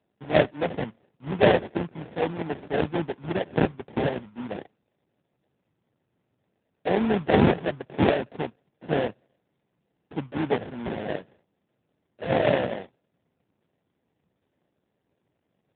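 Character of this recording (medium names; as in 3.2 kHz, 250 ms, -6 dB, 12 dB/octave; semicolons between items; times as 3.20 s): aliases and images of a low sample rate 1.2 kHz, jitter 20%; AMR-NB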